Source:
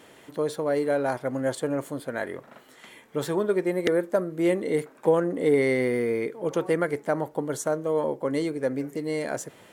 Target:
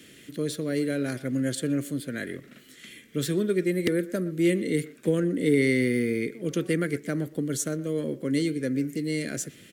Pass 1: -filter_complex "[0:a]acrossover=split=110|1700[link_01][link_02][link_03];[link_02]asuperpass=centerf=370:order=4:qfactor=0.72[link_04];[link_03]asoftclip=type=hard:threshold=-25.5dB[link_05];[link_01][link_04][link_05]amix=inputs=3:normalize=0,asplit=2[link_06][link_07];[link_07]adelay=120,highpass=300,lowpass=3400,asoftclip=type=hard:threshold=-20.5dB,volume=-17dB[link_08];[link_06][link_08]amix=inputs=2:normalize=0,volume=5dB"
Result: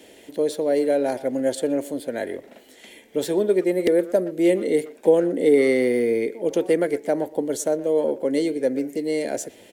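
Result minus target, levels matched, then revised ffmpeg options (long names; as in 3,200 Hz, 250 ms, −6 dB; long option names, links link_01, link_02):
125 Hz band −14.0 dB
-filter_complex "[0:a]acrossover=split=110|1700[link_01][link_02][link_03];[link_02]asuperpass=centerf=170:order=4:qfactor=0.72[link_04];[link_03]asoftclip=type=hard:threshold=-25.5dB[link_05];[link_01][link_04][link_05]amix=inputs=3:normalize=0,asplit=2[link_06][link_07];[link_07]adelay=120,highpass=300,lowpass=3400,asoftclip=type=hard:threshold=-20.5dB,volume=-17dB[link_08];[link_06][link_08]amix=inputs=2:normalize=0,volume=5dB"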